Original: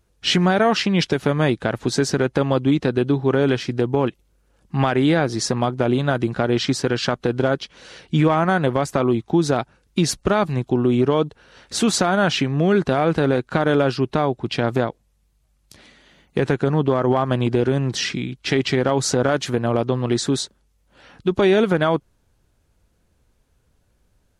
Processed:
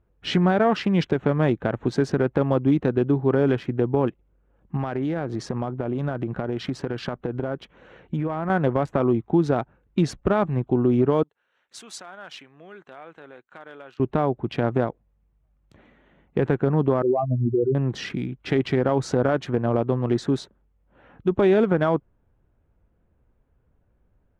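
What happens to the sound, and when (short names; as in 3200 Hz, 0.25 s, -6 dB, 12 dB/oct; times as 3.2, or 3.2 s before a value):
4.76–8.5 compressor, threshold -20 dBFS
11.23–14 differentiator
17.02–17.75 spectral contrast raised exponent 4
whole clip: Wiener smoothing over 9 samples; LPF 1400 Hz 6 dB/oct; gain -1.5 dB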